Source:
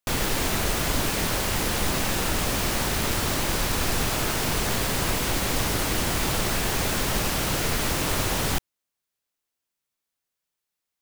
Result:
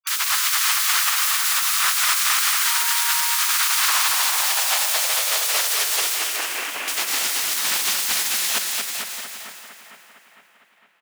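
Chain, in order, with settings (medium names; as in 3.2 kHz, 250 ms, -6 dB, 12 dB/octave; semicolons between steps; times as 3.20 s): 6.14–6.88 s: CVSD coder 16 kbps; spectral gate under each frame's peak -20 dB weak; bass shelf 480 Hz -11 dB; bouncing-ball echo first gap 230 ms, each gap 0.9×, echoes 5; 2.65–3.35 s: whistle 940 Hz -41 dBFS; two-band feedback delay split 2.5 kHz, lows 456 ms, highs 220 ms, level -7 dB; high-pass sweep 1.2 kHz -> 170 Hz, 3.70–7.67 s; loudspeaker Doppler distortion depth 0.13 ms; trim +8 dB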